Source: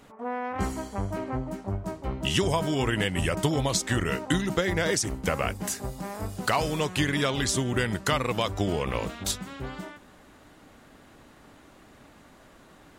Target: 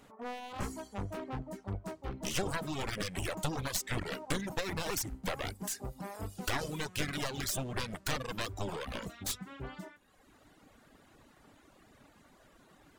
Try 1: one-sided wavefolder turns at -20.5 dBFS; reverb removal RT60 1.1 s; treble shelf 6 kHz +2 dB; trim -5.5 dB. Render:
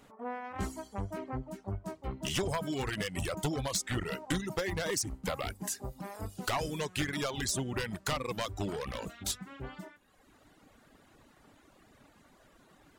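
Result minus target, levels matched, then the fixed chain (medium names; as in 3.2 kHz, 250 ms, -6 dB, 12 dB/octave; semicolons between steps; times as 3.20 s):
one-sided wavefolder: distortion -11 dB
one-sided wavefolder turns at -28 dBFS; reverb removal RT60 1.1 s; treble shelf 6 kHz +2 dB; trim -5.5 dB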